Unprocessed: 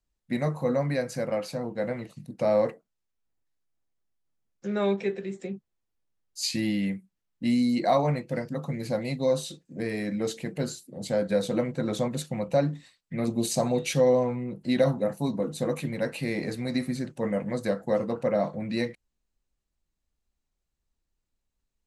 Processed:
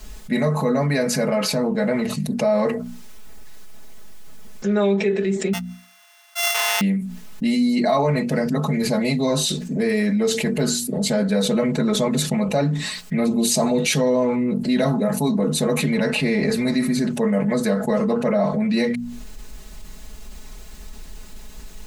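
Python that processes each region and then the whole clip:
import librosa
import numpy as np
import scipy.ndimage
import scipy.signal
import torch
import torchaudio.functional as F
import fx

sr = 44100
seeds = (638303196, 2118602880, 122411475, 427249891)

y = fx.chain(x, sr, fx.sample_sort(block=64),
    fx.highpass(hz=920.0, slope=24), at=(5.53, 6.81))
y = fx.chain(y, sr, fx.air_absorb(metres=51.0),
    fx.band_squash(depth_pct=70), at=(15.82, 16.5))
y = fx.hum_notches(y, sr, base_hz=60, count=4)
y = y + 0.95 * np.pad(y, (int(4.7 * sr / 1000.0), 0))[:len(y)]
y = fx.env_flatten(y, sr, amount_pct=70)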